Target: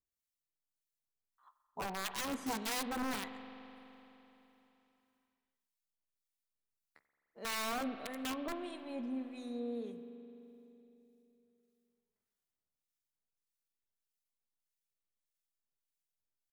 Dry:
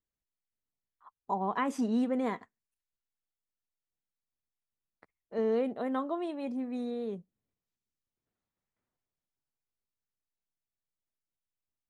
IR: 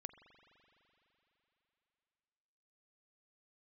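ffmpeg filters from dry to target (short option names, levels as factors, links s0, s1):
-filter_complex "[0:a]highshelf=f=3600:g=9.5,aeval=exprs='(mod(17.8*val(0)+1,2)-1)/17.8':c=same,acrossover=split=1300[s0][s1];[s0]aeval=exprs='val(0)*(1-0.7/2+0.7/2*cos(2*PI*2.3*n/s))':c=same[s2];[s1]aeval=exprs='val(0)*(1-0.7/2-0.7/2*cos(2*PI*2.3*n/s))':c=same[s3];[s2][s3]amix=inputs=2:normalize=0,atempo=0.72[s4];[1:a]atrim=start_sample=2205[s5];[s4][s5]afir=irnorm=-1:irlink=0,volume=1.19"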